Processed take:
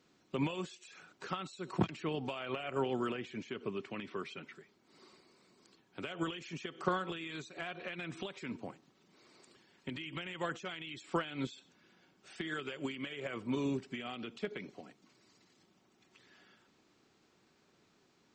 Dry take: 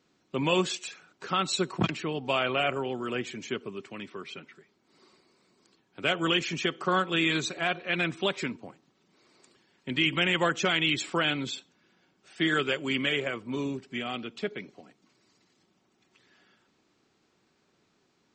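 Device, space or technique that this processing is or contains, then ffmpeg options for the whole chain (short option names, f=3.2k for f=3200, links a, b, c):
de-esser from a sidechain: -filter_complex "[0:a]asplit=2[a][b];[b]highpass=5.8k,apad=whole_len=809225[c];[a][c]sidechaincompress=threshold=-55dB:ratio=8:attack=1.2:release=91,asettb=1/sr,asplit=3[d][e][f];[d]atrim=end=3.094[g];[e]atrim=start=3.09:end=4.15,asetpts=PTS-STARTPTS,afade=t=in:d=0.004:c=qsin,afade=t=out:st=1.056:d=0.004:c=qsin,lowpass=5.3k[h];[f]atrim=start=4.146[i];[g][h]acrossfade=d=0.004:c1=hsin:c2=qsin[j];[j][i]acrossfade=d=0.004:c1=qsin:c2=hsin"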